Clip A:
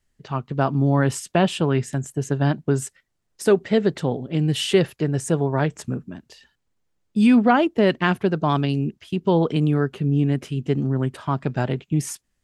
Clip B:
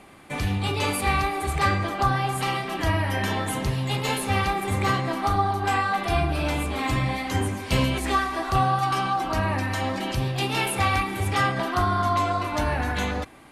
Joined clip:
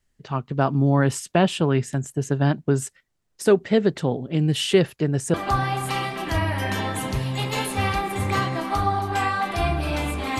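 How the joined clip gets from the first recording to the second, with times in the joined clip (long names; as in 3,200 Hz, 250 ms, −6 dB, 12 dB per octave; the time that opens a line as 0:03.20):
clip A
0:05.34: continue with clip B from 0:01.86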